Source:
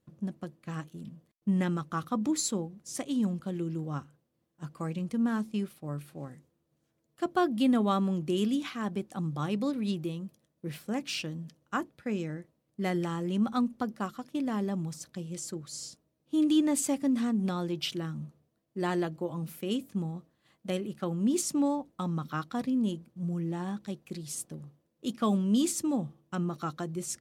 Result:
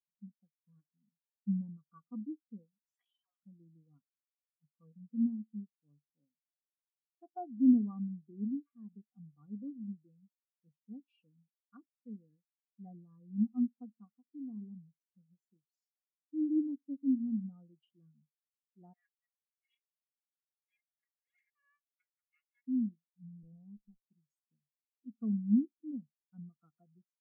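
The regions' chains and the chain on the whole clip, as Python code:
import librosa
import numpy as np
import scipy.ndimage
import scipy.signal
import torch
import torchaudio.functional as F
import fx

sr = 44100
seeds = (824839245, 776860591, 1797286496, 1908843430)

y = fx.chain(x, sr, fx.highpass(hz=1100.0, slope=24),
    fx.sustainer(db_per_s=21.0), at=(2.86, 3.43))
y = fx.chain(y, sr, fx.lower_of_two(delay_ms=1.8),
    fx.highpass_res(hz=2000.0, q=4.9), at=(18.93, 22.68))
y = fx.chain(y, sr, fx.lower_of_two(delay_ms=0.92),
    fx.lowpass(hz=1200.0, slope=12),
    fx.low_shelf(hz=200.0, db=6.0), at=(23.43, 24.03))
y = fx.env_lowpass_down(y, sr, base_hz=1000.0, full_db=-25.5)
y = y + 0.45 * np.pad(y, (int(4.2 * sr / 1000.0), 0))[:len(y)]
y = fx.spectral_expand(y, sr, expansion=2.5)
y = F.gain(torch.from_numpy(y), -1.0).numpy()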